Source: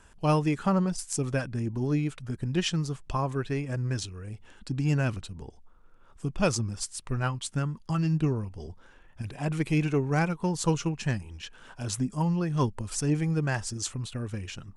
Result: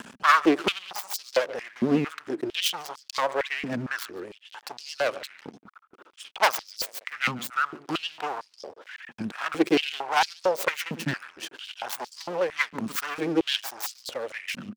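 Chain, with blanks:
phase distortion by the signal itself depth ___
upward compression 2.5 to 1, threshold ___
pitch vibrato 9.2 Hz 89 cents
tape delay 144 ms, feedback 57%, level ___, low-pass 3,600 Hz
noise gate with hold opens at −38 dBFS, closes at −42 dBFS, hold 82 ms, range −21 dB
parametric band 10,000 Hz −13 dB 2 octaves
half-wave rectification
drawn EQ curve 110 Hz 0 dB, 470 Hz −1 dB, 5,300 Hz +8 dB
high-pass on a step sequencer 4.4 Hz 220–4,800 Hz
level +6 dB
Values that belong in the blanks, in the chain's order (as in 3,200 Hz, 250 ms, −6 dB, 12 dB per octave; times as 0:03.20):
0.31 ms, −36 dBFS, −18 dB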